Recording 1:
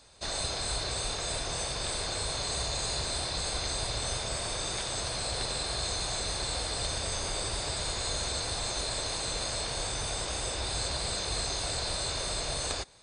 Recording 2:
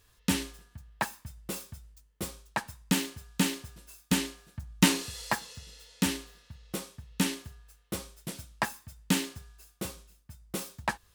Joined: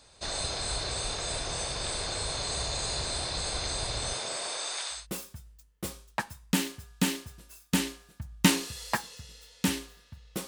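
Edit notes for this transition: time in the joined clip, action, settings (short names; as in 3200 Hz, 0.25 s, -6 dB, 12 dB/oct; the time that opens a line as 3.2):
recording 1
4.12–5.07 HPF 180 Hz -> 1500 Hz
4.98 switch to recording 2 from 1.36 s, crossfade 0.18 s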